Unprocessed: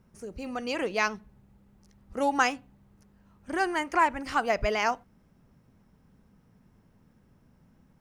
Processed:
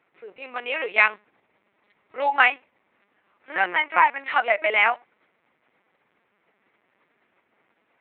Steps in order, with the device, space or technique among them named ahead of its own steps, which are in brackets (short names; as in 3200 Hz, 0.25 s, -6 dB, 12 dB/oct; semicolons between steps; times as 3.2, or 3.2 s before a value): talking toy (LPC vocoder at 8 kHz pitch kept; HPF 590 Hz 12 dB/oct; bell 2200 Hz +10 dB 0.55 oct); gain +5.5 dB